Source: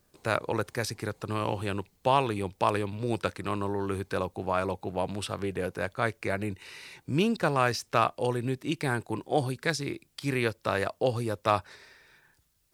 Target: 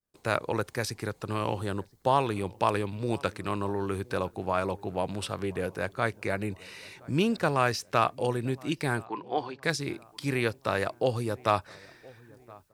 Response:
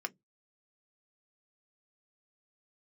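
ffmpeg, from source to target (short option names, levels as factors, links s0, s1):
-filter_complex "[0:a]asplit=3[s0][s1][s2];[s0]afade=t=out:st=9.04:d=0.02[s3];[s1]highpass=360,equalizer=f=570:t=q:w=4:g=-9,equalizer=f=1000:t=q:w=4:g=7,equalizer=f=3700:t=q:w=4:g=-4,lowpass=f=4400:w=0.5412,lowpass=f=4400:w=1.3066,afade=t=in:st=9.04:d=0.02,afade=t=out:st=9.62:d=0.02[s4];[s2]afade=t=in:st=9.62:d=0.02[s5];[s3][s4][s5]amix=inputs=3:normalize=0,asplit=2[s6][s7];[s7]adelay=1020,lowpass=f=1300:p=1,volume=0.0708,asplit=2[s8][s9];[s9]adelay=1020,lowpass=f=1300:p=1,volume=0.53,asplit=2[s10][s11];[s11]adelay=1020,lowpass=f=1300:p=1,volume=0.53,asplit=2[s12][s13];[s13]adelay=1020,lowpass=f=1300:p=1,volume=0.53[s14];[s6][s8][s10][s12][s14]amix=inputs=5:normalize=0,agate=range=0.0224:threshold=0.00178:ratio=3:detection=peak,asettb=1/sr,asplit=3[s15][s16][s17];[s15]atrim=end=1.594[s18];[s16]atrim=start=1.59:end=2.2,asetpts=PTS-STARTPTS,afade=t=in:d=0.004:c=qsin,afade=t=out:st=0.606:d=0.004:c=qsin,equalizer=f=2500:w=3.1:g=-11.5[s19];[s17]atrim=start=2.196[s20];[s18][s19]acrossfade=d=0.004:c1=hsin:c2=qsin[s21];[s21][s20]acrossfade=d=0.004:c1=qsin:c2=hsin"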